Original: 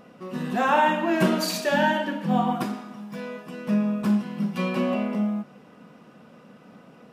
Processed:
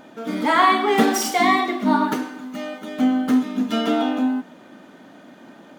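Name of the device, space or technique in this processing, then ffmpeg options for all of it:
nightcore: -af "asetrate=54243,aresample=44100,volume=1.68"

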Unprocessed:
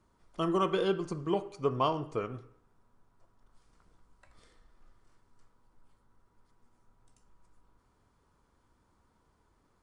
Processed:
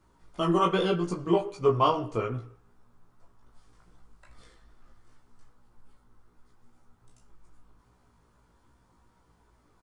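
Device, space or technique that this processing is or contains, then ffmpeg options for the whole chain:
double-tracked vocal: -filter_complex "[0:a]asplit=2[s0][s1];[s1]adelay=17,volume=0.596[s2];[s0][s2]amix=inputs=2:normalize=0,flanger=delay=15.5:depth=2.7:speed=2.5,volume=2.24"

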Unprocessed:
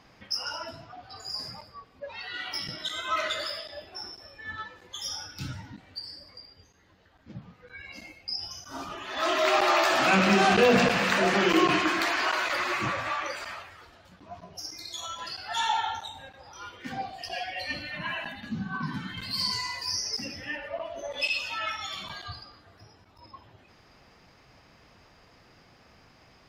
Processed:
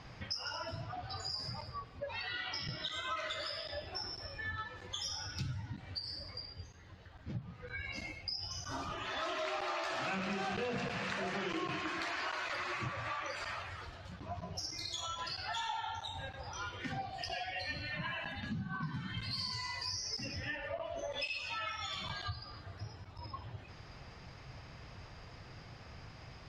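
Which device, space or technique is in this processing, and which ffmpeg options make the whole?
jukebox: -filter_complex "[0:a]asettb=1/sr,asplit=3[s0][s1][s2];[s0]atrim=end=2.294[s3];[s1]atrim=start=2.29:end=2.92,asetpts=PTS-STARTPTS,afade=t=in:d=0.004:c=qsin,afade=t=out:st=0.626:d=0.004:c=qsin,lowpass=f=5800:w=0.5412,lowpass=f=5800:w=1.3066[s4];[s2]atrim=start=2.916[s5];[s3][s4]acrossfade=d=0.004:c1=hsin:c2=qsin[s6];[s6][s5]acrossfade=d=0.004:c1=qsin:c2=hsin,lowpass=7300,lowshelf=f=170:t=q:w=1.5:g=6.5,acompressor=threshold=0.00891:ratio=5,volume=1.41"

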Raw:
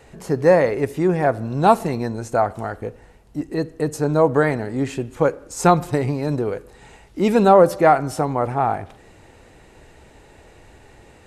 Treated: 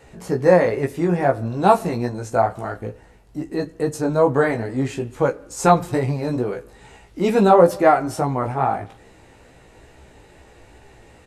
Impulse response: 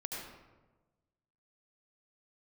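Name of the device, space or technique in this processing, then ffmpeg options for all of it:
double-tracked vocal: -filter_complex "[0:a]asplit=2[s0][s1];[s1]adelay=28,volume=0.2[s2];[s0][s2]amix=inputs=2:normalize=0,flanger=delay=15:depth=2.8:speed=2.3,volume=1.33"

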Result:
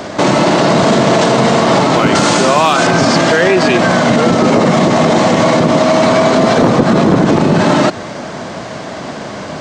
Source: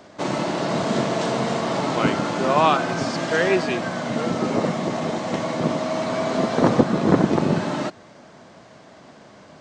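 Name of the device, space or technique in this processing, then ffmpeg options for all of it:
loud club master: -filter_complex "[0:a]asettb=1/sr,asplit=3[s0][s1][s2];[s0]atrim=end=2.154[s3];[s1]atrim=start=2.15:end=2.87,asetpts=PTS-STARTPTS,afade=t=in:d=0.004:c=qsin,afade=t=out:st=0.716:d=0.004:c=qsin,aemphasis=mode=production:type=75kf[s4];[s2]atrim=start=2.866[s5];[s3][s4]acrossfade=d=0.004:c1=hsin:c2=qsin[s6];[s6][s5]acrossfade=d=0.004:c1=qsin:c2=hsin,acompressor=threshold=0.0891:ratio=3,asoftclip=type=hard:threshold=0.188,alimiter=level_in=14.1:limit=0.891:release=50:level=0:latency=1,volume=0.891"

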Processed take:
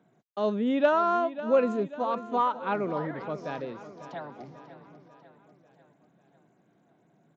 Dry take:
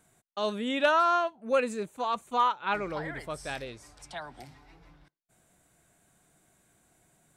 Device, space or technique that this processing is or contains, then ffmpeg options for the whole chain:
Bluetooth headset: -af "highpass=f=150:w=0.5412,highpass=f=150:w=1.3066,tiltshelf=f=1200:g=9,aecho=1:1:544|1088|1632|2176|2720:0.2|0.108|0.0582|0.0314|0.017,aresample=16000,aresample=44100,volume=0.794" -ar 16000 -c:a sbc -b:a 64k

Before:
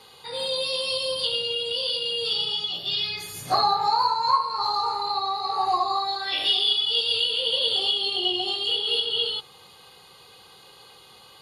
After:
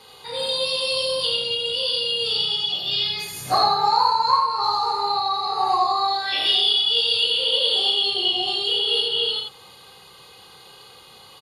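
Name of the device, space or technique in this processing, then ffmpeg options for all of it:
slapback doubling: -filter_complex "[0:a]asplit=3[s0][s1][s2];[s1]adelay=32,volume=0.473[s3];[s2]adelay=84,volume=0.631[s4];[s0][s3][s4]amix=inputs=3:normalize=0,asettb=1/sr,asplit=3[s5][s6][s7];[s5]atrim=end=7.454[s8];[s6]atrim=start=7.45:end=8.04,asetpts=PTS-STARTPTS,afade=t=in:d=0.004:c=qsin,afade=t=out:st=0.586:d=0.004:c=qsin,highpass=190[s9];[s7]atrim=start=8.036[s10];[s8][s9]acrossfade=d=0.004:c1=hsin:c2=qsin[s11];[s11][s10]acrossfade=d=0.004:c1=qsin:c2=hsin,volume=1.19"

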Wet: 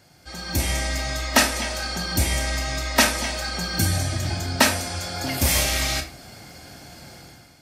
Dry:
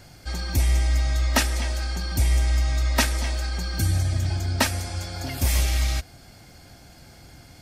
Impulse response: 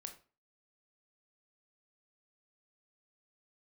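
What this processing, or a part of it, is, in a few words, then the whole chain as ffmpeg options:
far laptop microphone: -filter_complex "[1:a]atrim=start_sample=2205[s0];[0:a][s0]afir=irnorm=-1:irlink=0,highpass=f=150:p=1,dynaudnorm=f=140:g=7:m=3.98"

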